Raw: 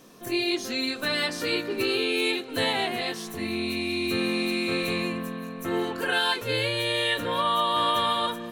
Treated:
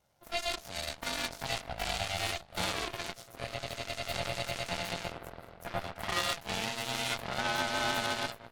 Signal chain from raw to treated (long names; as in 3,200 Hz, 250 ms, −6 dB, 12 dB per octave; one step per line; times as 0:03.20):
ring modulation 340 Hz
harmonic generator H 3 −14 dB, 5 −45 dB, 7 −27 dB, 8 −22 dB, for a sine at −13 dBFS